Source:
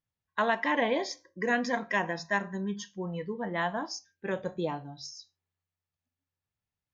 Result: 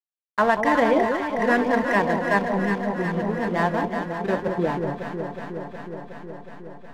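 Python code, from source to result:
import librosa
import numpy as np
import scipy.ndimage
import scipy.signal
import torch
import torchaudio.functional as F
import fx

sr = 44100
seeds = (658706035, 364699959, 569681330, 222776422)

p1 = scipy.signal.sosfilt(scipy.signal.butter(2, 1900.0, 'lowpass', fs=sr, output='sos'), x)
p2 = fx.backlash(p1, sr, play_db=-35.5)
p3 = p2 + fx.echo_alternate(p2, sr, ms=183, hz=940.0, feedback_pct=86, wet_db=-5.0, dry=0)
y = p3 * 10.0 ** (8.5 / 20.0)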